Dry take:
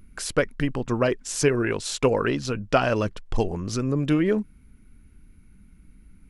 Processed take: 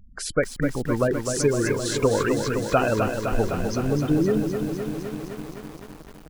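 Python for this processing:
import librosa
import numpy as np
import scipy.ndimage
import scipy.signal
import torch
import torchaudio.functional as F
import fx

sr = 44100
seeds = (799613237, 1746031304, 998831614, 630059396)

y = fx.spec_gate(x, sr, threshold_db=-20, keep='strong')
y = fx.echo_crushed(y, sr, ms=256, feedback_pct=80, bits=7, wet_db=-6)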